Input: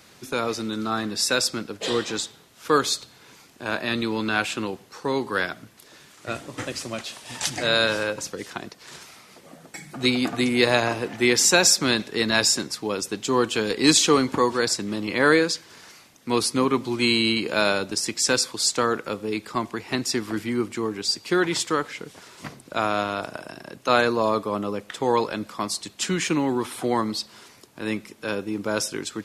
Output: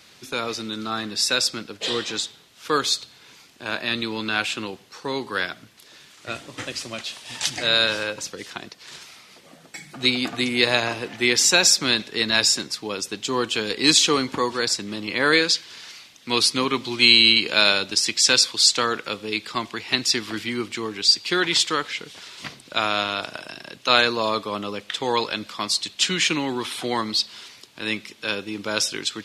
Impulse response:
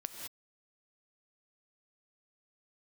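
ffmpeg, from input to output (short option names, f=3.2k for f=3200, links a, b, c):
-af "asetnsamples=n=441:p=0,asendcmd='15.33 equalizer g 14.5',equalizer=f=3.5k:t=o:w=1.9:g=8,volume=-3.5dB"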